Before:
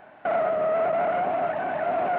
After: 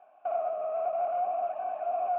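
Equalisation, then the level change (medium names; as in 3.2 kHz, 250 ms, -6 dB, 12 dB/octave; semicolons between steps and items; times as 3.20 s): vowel filter a; -2.5 dB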